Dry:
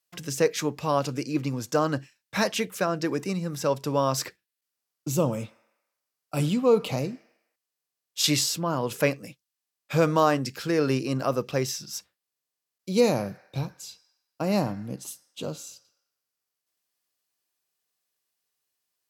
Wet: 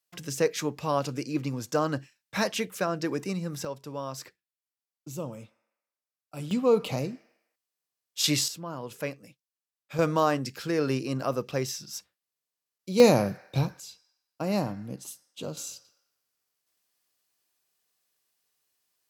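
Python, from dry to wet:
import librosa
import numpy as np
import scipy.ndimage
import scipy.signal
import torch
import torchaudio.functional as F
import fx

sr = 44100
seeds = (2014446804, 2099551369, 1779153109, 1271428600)

y = fx.gain(x, sr, db=fx.steps((0.0, -2.5), (3.65, -11.5), (6.51, -2.0), (8.48, -10.0), (9.99, -3.0), (13.0, 4.0), (13.8, -3.0), (15.57, 4.0)))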